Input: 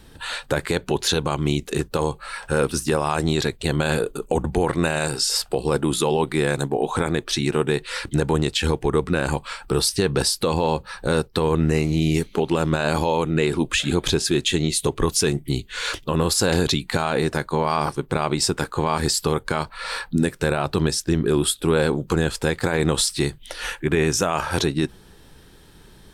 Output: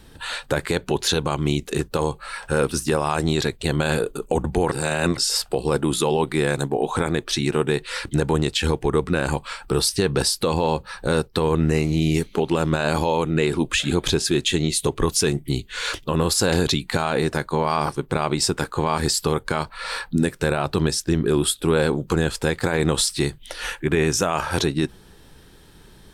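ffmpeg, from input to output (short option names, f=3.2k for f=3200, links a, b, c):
-filter_complex "[0:a]asplit=3[a][b][c];[a]atrim=end=4.722[d];[b]atrim=start=4.718:end=5.182,asetpts=PTS-STARTPTS,areverse[e];[c]atrim=start=5.178[f];[d][e]acrossfade=d=0.004:c1=hsin:c2=hsin[g];[g][f]acrossfade=d=0.004:c1=hsin:c2=hsin"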